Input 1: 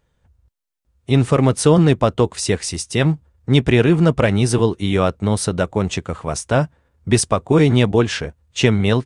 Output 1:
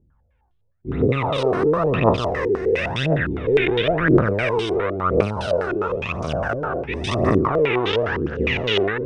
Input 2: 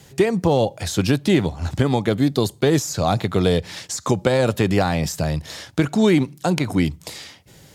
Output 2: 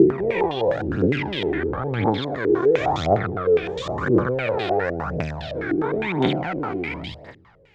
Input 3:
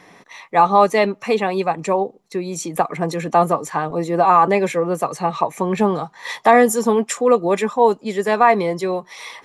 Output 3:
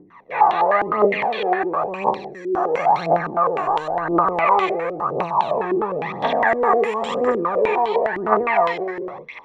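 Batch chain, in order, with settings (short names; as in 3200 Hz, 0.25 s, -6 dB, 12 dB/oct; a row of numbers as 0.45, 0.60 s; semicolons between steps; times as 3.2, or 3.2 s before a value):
spectral dilation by 0.48 s; phaser 0.96 Hz, delay 2.9 ms, feedback 65%; stepped low-pass 9.8 Hz 350–3300 Hz; gain -16.5 dB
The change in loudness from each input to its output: -3.0, -2.5, -2.0 LU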